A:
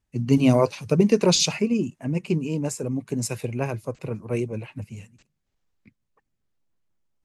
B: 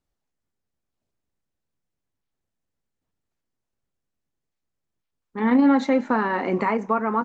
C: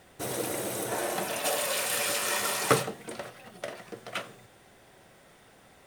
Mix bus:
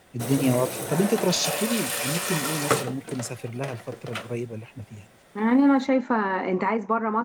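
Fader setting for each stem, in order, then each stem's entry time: −4.5, −1.5, +1.0 decibels; 0.00, 0.00, 0.00 seconds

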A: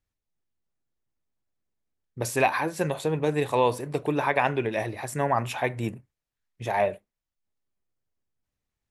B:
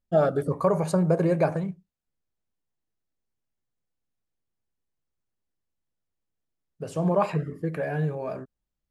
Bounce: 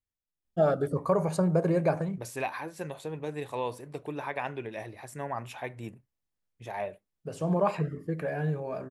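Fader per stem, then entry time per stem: −10.5, −3.0 decibels; 0.00, 0.45 seconds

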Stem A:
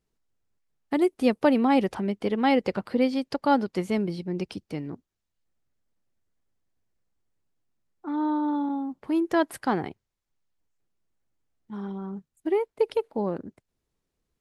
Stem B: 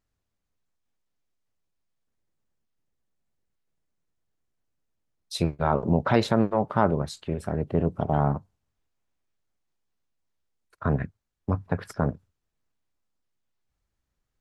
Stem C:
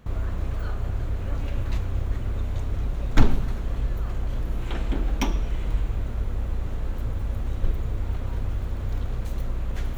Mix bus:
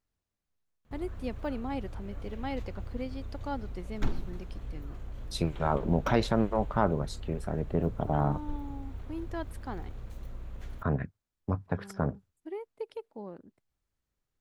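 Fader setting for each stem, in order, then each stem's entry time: −14.5, −4.5, −13.5 decibels; 0.00, 0.00, 0.85 seconds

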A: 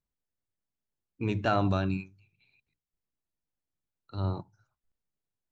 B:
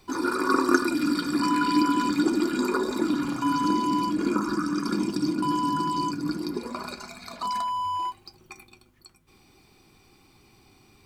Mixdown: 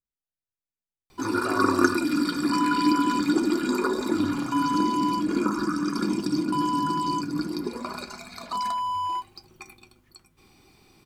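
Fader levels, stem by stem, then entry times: −9.5, +0.5 decibels; 0.00, 1.10 seconds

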